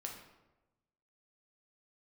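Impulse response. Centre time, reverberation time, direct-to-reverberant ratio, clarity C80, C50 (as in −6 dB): 34 ms, 1.1 s, 0.5 dB, 8.0 dB, 5.0 dB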